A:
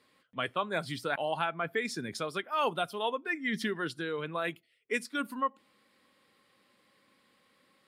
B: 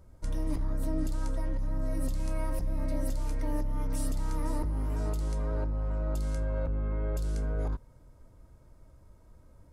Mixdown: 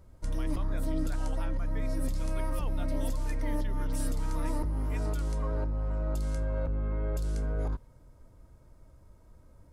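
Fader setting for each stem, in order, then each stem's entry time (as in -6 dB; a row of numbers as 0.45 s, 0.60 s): -15.5 dB, 0.0 dB; 0.00 s, 0.00 s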